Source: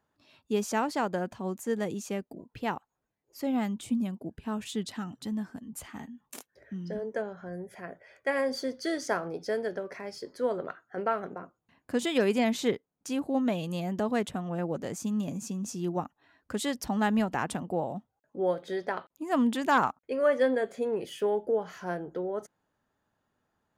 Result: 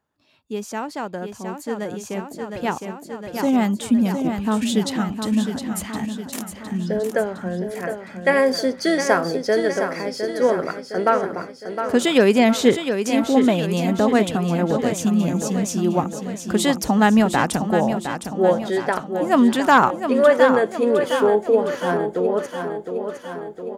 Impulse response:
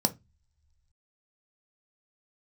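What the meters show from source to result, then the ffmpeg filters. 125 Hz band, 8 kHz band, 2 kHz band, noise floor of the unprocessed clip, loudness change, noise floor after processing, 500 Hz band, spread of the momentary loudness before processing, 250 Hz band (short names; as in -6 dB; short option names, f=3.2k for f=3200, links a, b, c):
+11.5 dB, +11.5 dB, +11.5 dB, -82 dBFS, +11.0 dB, -40 dBFS, +11.5 dB, 14 LU, +11.5 dB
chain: -af "aecho=1:1:711|1422|2133|2844|3555|4266|4977:0.398|0.219|0.12|0.0662|0.0364|0.02|0.011,dynaudnorm=f=270:g=21:m=13.5dB"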